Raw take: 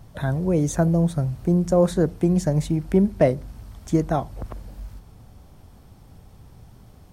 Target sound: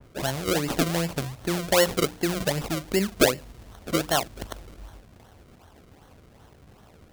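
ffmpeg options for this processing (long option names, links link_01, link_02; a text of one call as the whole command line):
ffmpeg -i in.wav -filter_complex "[0:a]asplit=2[link_01][link_02];[link_02]acompressor=threshold=-27dB:ratio=6,volume=-1.5dB[link_03];[link_01][link_03]amix=inputs=2:normalize=0,highpass=66,equalizer=frequency=130:width_type=o:width=2.7:gain=-12,bandreject=frequency=60:width_type=h:width=6,bandreject=frequency=120:width_type=h:width=6,bandreject=frequency=180:width_type=h:width=6,bandreject=frequency=240:width_type=h:width=6,bandreject=frequency=300:width_type=h:width=6,acrusher=samples=35:mix=1:aa=0.000001:lfo=1:lforange=35:lforate=2.6,adynamicequalizer=threshold=0.00708:dfrequency=2800:dqfactor=0.7:tfrequency=2800:tqfactor=0.7:attack=5:release=100:ratio=0.375:range=2.5:mode=boostabove:tftype=highshelf" out.wav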